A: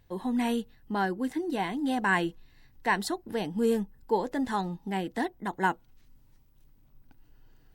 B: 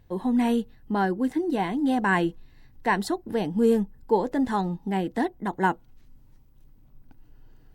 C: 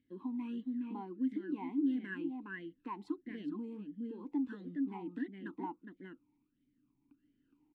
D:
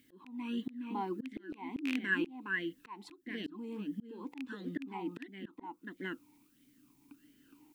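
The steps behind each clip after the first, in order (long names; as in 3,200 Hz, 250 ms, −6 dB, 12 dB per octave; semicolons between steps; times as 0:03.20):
tilt shelving filter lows +3.5 dB, about 1,100 Hz; level +2.5 dB
slap from a distant wall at 71 metres, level −6 dB; downward compressor, threshold −24 dBFS, peak gain reduction 9 dB; formant filter swept between two vowels i-u 1.5 Hz; level −2 dB
loose part that buzzes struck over −38 dBFS, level −29 dBFS; spectral tilt +2.5 dB per octave; volume swells 554 ms; level +14.5 dB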